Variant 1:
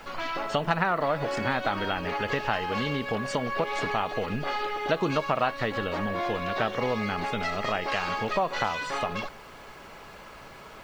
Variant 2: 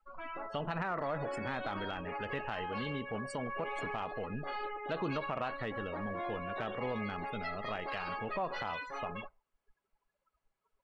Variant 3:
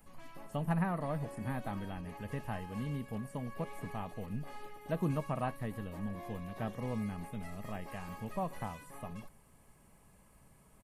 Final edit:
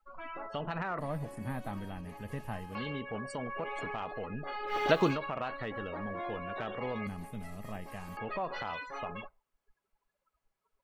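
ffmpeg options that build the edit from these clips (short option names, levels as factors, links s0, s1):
-filter_complex "[2:a]asplit=2[s0][s1];[1:a]asplit=4[s2][s3][s4][s5];[s2]atrim=end=0.992[s6];[s0]atrim=start=0.988:end=2.752[s7];[s3]atrim=start=2.748:end=4.76[s8];[0:a]atrim=start=4.66:end=5.17[s9];[s4]atrim=start=5.07:end=7.072[s10];[s1]atrim=start=7.068:end=8.172[s11];[s5]atrim=start=8.168[s12];[s6][s7]acrossfade=d=0.004:c1=hsin:c2=hsin[s13];[s13][s8]acrossfade=d=0.004:c1=hsin:c2=hsin[s14];[s14][s9]acrossfade=d=0.1:c1=tri:c2=tri[s15];[s15][s10]acrossfade=d=0.1:c1=tri:c2=tri[s16];[s16][s11]acrossfade=d=0.004:c1=hsin:c2=hsin[s17];[s17][s12]acrossfade=d=0.004:c1=hsin:c2=hsin"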